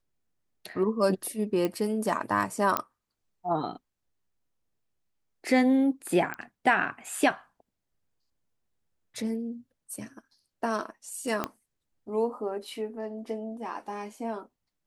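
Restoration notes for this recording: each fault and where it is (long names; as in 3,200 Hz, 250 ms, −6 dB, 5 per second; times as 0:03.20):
0:01.65: click −16 dBFS
0:02.77: click −10 dBFS
0:06.34: click −20 dBFS
0:11.44: click −14 dBFS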